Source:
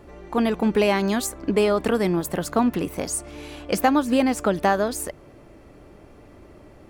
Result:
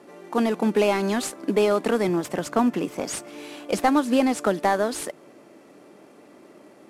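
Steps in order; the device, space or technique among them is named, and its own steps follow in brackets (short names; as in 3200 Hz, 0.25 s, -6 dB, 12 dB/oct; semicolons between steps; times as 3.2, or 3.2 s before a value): early wireless headset (HPF 190 Hz 24 dB/oct; CVSD 64 kbps); 2.08–3.28 thirty-one-band EQ 125 Hz +10 dB, 4000 Hz -4 dB, 10000 Hz -6 dB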